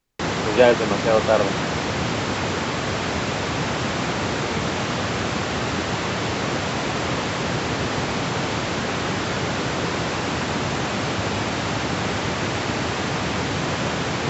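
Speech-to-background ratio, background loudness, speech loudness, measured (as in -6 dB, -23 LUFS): 4.0 dB, -24.0 LUFS, -20.0 LUFS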